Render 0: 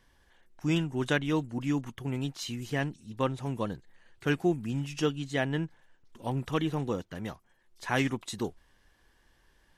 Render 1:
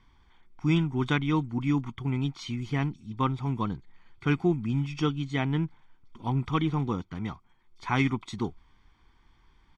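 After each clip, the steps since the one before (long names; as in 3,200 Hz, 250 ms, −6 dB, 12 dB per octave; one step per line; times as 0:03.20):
low-pass filter 3,800 Hz 12 dB per octave
comb filter 0.9 ms, depth 76%
level +1 dB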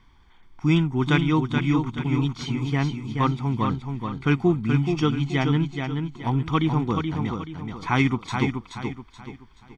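repeating echo 428 ms, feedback 36%, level −5.5 dB
level +4.5 dB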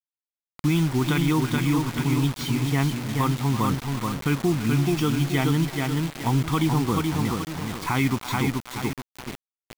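far-end echo of a speakerphone 330 ms, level −16 dB
brickwall limiter −15.5 dBFS, peak gain reduction 9 dB
bit reduction 6 bits
level +2 dB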